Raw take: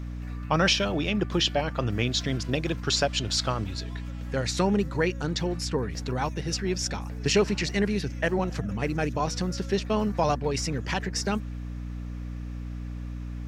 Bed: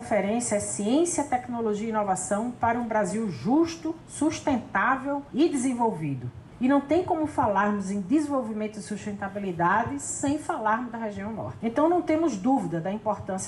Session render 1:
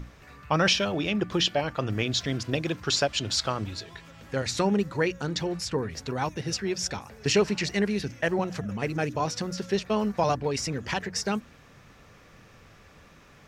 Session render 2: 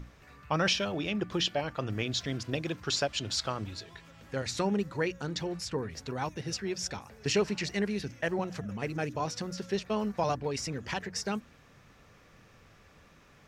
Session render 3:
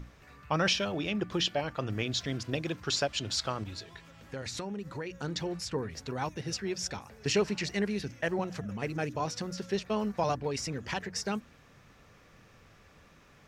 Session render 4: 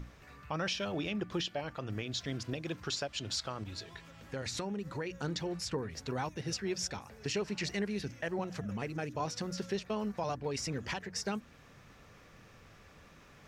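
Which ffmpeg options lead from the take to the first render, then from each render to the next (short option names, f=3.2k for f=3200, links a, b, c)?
-af "bandreject=f=60:t=h:w=6,bandreject=f=120:t=h:w=6,bandreject=f=180:t=h:w=6,bandreject=f=240:t=h:w=6,bandreject=f=300:t=h:w=6"
-af "volume=-5dB"
-filter_complex "[0:a]asettb=1/sr,asplit=3[a][b][c];[a]atrim=end=3.634[d];[b]atrim=start=3.63:end=5.21,asetpts=PTS-STARTPTS,afade=t=in:d=0.004:c=qsin,afade=t=out:st=1.576:d=0.004:c=qsin,acompressor=threshold=-34dB:ratio=6:attack=3.2:release=140:knee=1:detection=peak[e];[c]atrim=start=5.206[f];[d][e]acrossfade=d=0.004:c1=hsin:c2=qsin[g];[g][f]acrossfade=d=0.004:c1=qsin:c2=hsin"
-af "alimiter=level_in=1dB:limit=-24dB:level=0:latency=1:release=365,volume=-1dB,areverse,acompressor=mode=upward:threshold=-53dB:ratio=2.5,areverse"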